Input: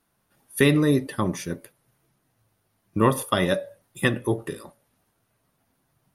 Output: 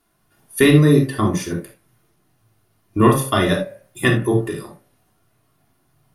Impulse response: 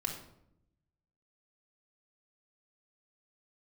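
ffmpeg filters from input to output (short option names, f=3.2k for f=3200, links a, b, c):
-filter_complex "[0:a]bandreject=f=66.72:t=h:w=4,bandreject=f=133.44:t=h:w=4,bandreject=f=200.16:t=h:w=4,bandreject=f=266.88:t=h:w=4,bandreject=f=333.6:t=h:w=4,bandreject=f=400.32:t=h:w=4,bandreject=f=467.04:t=h:w=4,bandreject=f=533.76:t=h:w=4,bandreject=f=600.48:t=h:w=4,bandreject=f=667.2:t=h:w=4,bandreject=f=733.92:t=h:w=4,bandreject=f=800.64:t=h:w=4,bandreject=f=867.36:t=h:w=4,bandreject=f=934.08:t=h:w=4,bandreject=f=1.0008k:t=h:w=4,bandreject=f=1.06752k:t=h:w=4,bandreject=f=1.13424k:t=h:w=4,bandreject=f=1.20096k:t=h:w=4,bandreject=f=1.26768k:t=h:w=4,bandreject=f=1.3344k:t=h:w=4,bandreject=f=1.40112k:t=h:w=4,bandreject=f=1.46784k:t=h:w=4,bandreject=f=1.53456k:t=h:w=4,bandreject=f=1.60128k:t=h:w=4,bandreject=f=1.668k:t=h:w=4,bandreject=f=1.73472k:t=h:w=4,bandreject=f=1.80144k:t=h:w=4,bandreject=f=1.86816k:t=h:w=4,bandreject=f=1.93488k:t=h:w=4,bandreject=f=2.0016k:t=h:w=4,bandreject=f=2.06832k:t=h:w=4,bandreject=f=2.13504k:t=h:w=4,bandreject=f=2.20176k:t=h:w=4,bandreject=f=2.26848k:t=h:w=4,bandreject=f=2.3352k:t=h:w=4,bandreject=f=2.40192k:t=h:w=4,bandreject=f=2.46864k:t=h:w=4,bandreject=f=2.53536k:t=h:w=4[a];[1:a]atrim=start_sample=2205,atrim=end_sample=3969[b];[a][b]afir=irnorm=-1:irlink=0,volume=4dB"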